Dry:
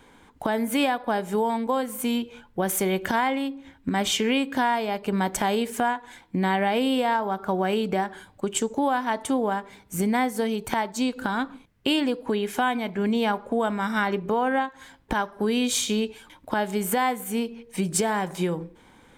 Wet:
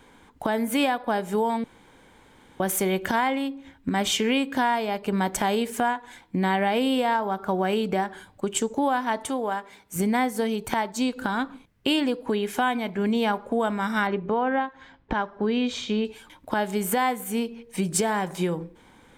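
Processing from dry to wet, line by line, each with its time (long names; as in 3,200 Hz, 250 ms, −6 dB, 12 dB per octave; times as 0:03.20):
0:01.64–0:02.60: fill with room tone
0:09.29–0:09.96: low-shelf EQ 270 Hz −11 dB
0:14.07–0:16.05: high-frequency loss of the air 190 metres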